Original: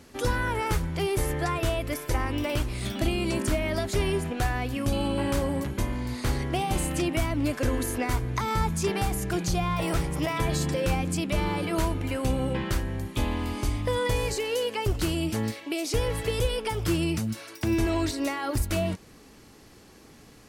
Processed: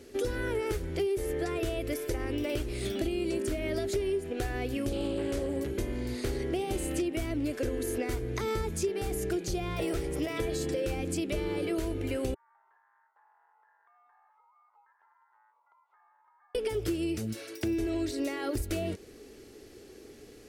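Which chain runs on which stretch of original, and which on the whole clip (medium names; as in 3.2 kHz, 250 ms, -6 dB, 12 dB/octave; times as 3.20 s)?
4.89–5.57 s: Chebyshev low-pass 11 kHz + loudspeaker Doppler distortion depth 0.25 ms
12.34–16.55 s: ring modulator 1.7 kHz + Butterworth band-pass 940 Hz, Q 5.8 + compression 3:1, threshold -56 dBFS
whole clip: fifteen-band graphic EQ 160 Hz -8 dB, 400 Hz +12 dB, 1 kHz -10 dB; compression 6:1, threshold -26 dBFS; trim -2 dB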